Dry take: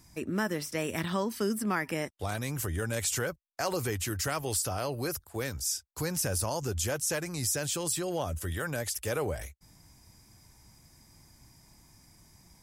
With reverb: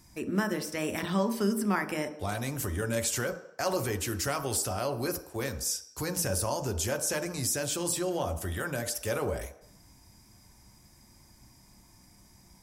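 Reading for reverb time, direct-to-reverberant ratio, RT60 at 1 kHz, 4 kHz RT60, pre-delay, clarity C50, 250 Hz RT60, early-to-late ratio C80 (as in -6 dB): 0.70 s, 7.0 dB, 0.75 s, 0.70 s, 3 ms, 12.5 dB, 0.55 s, 14.5 dB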